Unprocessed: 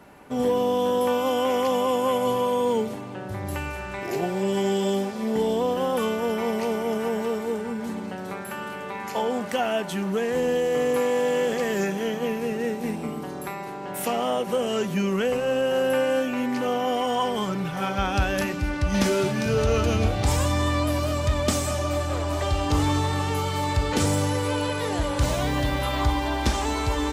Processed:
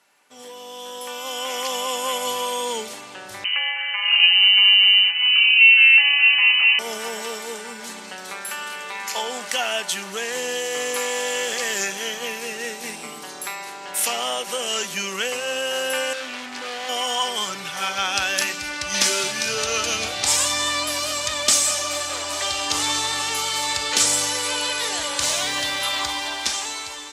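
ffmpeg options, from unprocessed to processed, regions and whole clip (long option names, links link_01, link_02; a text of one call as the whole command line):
ffmpeg -i in.wav -filter_complex "[0:a]asettb=1/sr,asplit=3[link_01][link_02][link_03];[link_01]atrim=end=3.444[link_04];[link_02]atrim=start=3.44:end=6.79,asetpts=PTS-STARTPTS,afade=type=in:duration=0.004:curve=qsin,afade=type=out:start_time=3.346:duration=0.004:curve=qsin,highpass=200,aecho=1:1:5.9:0.93,atrim=end_sample=147735,lowpass=frequency=2700:width_type=q:width=0.5098,lowpass=frequency=2700:width_type=q:width=0.6013,lowpass=frequency=2700:width_type=q:width=0.9,lowpass=frequency=2700:width_type=q:width=2.563,afreqshift=-3200[link_05];[link_03]atrim=start=6.786[link_06];[link_04][link_05]acrossfade=duration=0.004:curve1=hsin:curve2=qsin[link_07];[link_07][link_06]acrossfade=duration=0.004:curve1=qsin:curve2=hsin,asettb=1/sr,asplit=3[link_08][link_09][link_10];[link_08]atrim=end=16.134[link_11];[link_09]atrim=start=16.13:end=16.89,asetpts=PTS-STARTPTS,afade=type=in:duration=0.004:curve=qsin,afade=type=out:start_time=0.756:duration=0.004:curve=qsin,aemphasis=mode=reproduction:type=50kf,volume=27.5dB,asoftclip=hard,volume=-27.5dB[link_12];[link_10]atrim=start=16.886[link_13];[link_11][link_12]acrossfade=duration=0.004:curve1=hsin:curve2=qsin[link_14];[link_14][link_13]acrossfade=duration=0.004:curve1=qsin:curve2=hsin,lowpass=7200,aderivative,dynaudnorm=framelen=570:gausssize=5:maxgain=13.5dB,volume=4dB" out.wav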